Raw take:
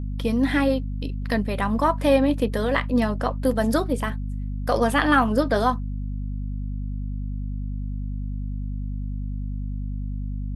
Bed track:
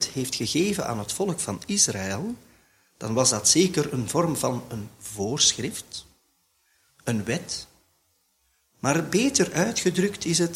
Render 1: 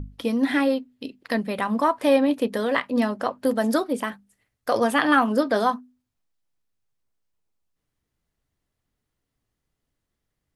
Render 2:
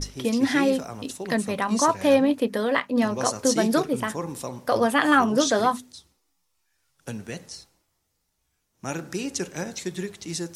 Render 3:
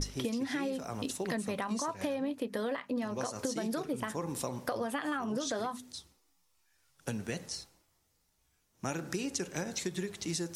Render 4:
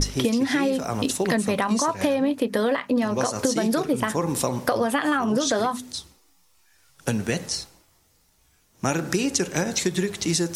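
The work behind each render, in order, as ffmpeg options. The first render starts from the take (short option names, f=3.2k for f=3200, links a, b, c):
-af "bandreject=f=50:t=h:w=6,bandreject=f=100:t=h:w=6,bandreject=f=150:t=h:w=6,bandreject=f=200:t=h:w=6,bandreject=f=250:t=h:w=6"
-filter_complex "[1:a]volume=-8.5dB[a];[0:a][a]amix=inputs=2:normalize=0"
-af "alimiter=limit=-14.5dB:level=0:latency=1:release=139,acompressor=threshold=-31dB:ratio=10"
-af "volume=12dB"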